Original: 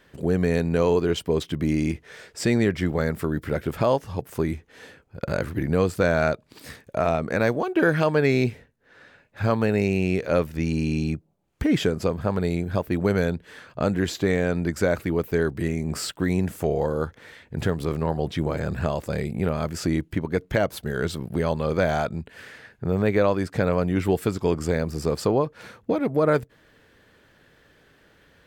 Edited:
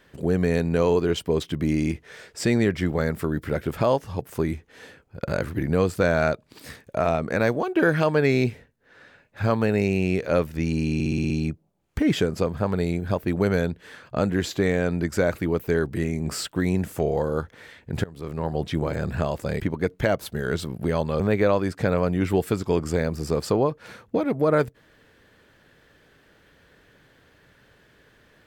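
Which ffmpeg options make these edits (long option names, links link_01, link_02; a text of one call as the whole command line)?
ffmpeg -i in.wav -filter_complex "[0:a]asplit=10[link_01][link_02][link_03][link_04][link_05][link_06][link_07][link_08][link_09][link_10];[link_01]atrim=end=11.002[link_11];[link_02]atrim=start=10.938:end=11.002[link_12];[link_03]atrim=start=10.938:end=11.002[link_13];[link_04]atrim=start=10.938:end=11.002[link_14];[link_05]atrim=start=10.938:end=11.002[link_15];[link_06]atrim=start=10.938:end=11.002[link_16];[link_07]atrim=start=10.938:end=17.68,asetpts=PTS-STARTPTS,afade=type=out:start_time=6.738:duration=0.004:curve=hsin:silence=0.0668344[link_17];[link_08]atrim=start=17.68:end=19.242,asetpts=PTS-STARTPTS,afade=type=in:duration=0.56:silence=0.0668344[link_18];[link_09]atrim=start=20.108:end=21.712[link_19];[link_10]atrim=start=22.948[link_20];[link_11][link_12]acrossfade=duration=0.004:curve1=hsin:curve2=hsin[link_21];[link_21][link_13]acrossfade=duration=0.004:curve1=hsin:curve2=hsin[link_22];[link_22][link_14]acrossfade=duration=0.004:curve1=hsin:curve2=hsin[link_23];[link_23][link_15]acrossfade=duration=0.004:curve1=hsin:curve2=hsin[link_24];[link_24][link_16]acrossfade=duration=0.004:curve1=hsin:curve2=hsin[link_25];[link_17][link_18]concat=n=2:v=0:a=1[link_26];[link_25][link_26]acrossfade=duration=0.004:curve1=hsin:curve2=hsin[link_27];[link_27][link_19]acrossfade=duration=0.004:curve1=hsin:curve2=hsin[link_28];[link_28][link_20]acrossfade=duration=0.004:curve1=hsin:curve2=hsin" out.wav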